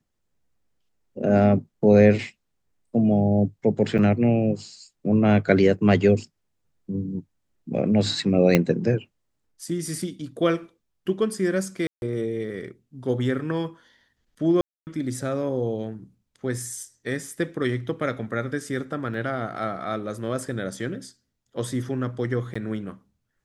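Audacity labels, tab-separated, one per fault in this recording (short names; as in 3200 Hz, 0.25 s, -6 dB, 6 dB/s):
3.980000	3.990000	gap 7.7 ms
8.550000	8.550000	pop -4 dBFS
11.870000	12.020000	gap 0.151 s
14.610000	14.870000	gap 0.259 s
19.140000	19.140000	gap 3.4 ms
22.540000	22.550000	gap 15 ms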